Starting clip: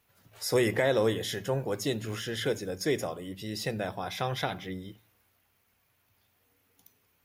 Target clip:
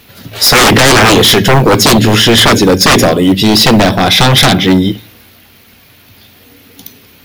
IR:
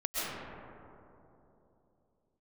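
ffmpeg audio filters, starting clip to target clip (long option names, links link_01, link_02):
-filter_complex "[0:a]equalizer=frequency=250:width_type=o:width=1:gain=7,equalizer=frequency=1000:width_type=o:width=1:gain=-4,equalizer=frequency=4000:width_type=o:width=1:gain=7,equalizer=frequency=8000:width_type=o:width=1:gain=-5,asplit=2[link_01][link_02];[link_02]acrusher=bits=4:mix=0:aa=0.000001,volume=-11.5dB[link_03];[link_01][link_03]amix=inputs=2:normalize=0,aeval=exprs='0.335*sin(PI/2*7.08*val(0)/0.335)':channel_layout=same,volume=8dB"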